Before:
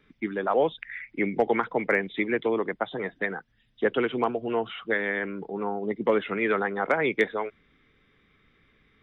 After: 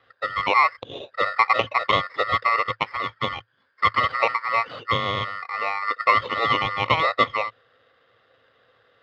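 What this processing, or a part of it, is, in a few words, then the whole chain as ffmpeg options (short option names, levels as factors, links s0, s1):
ring modulator pedal into a guitar cabinet: -af "aeval=exprs='val(0)*sgn(sin(2*PI*1600*n/s))':c=same,highpass=88,equalizer=f=110:t=q:w=4:g=8,equalizer=f=190:t=q:w=4:g=-9,equalizer=f=310:t=q:w=4:g=-3,equalizer=f=520:t=q:w=4:g=10,equalizer=f=1100:t=q:w=4:g=6,equalizer=f=1600:t=q:w=4:g=-5,lowpass=f=3400:w=0.5412,lowpass=f=3400:w=1.3066,volume=1.41"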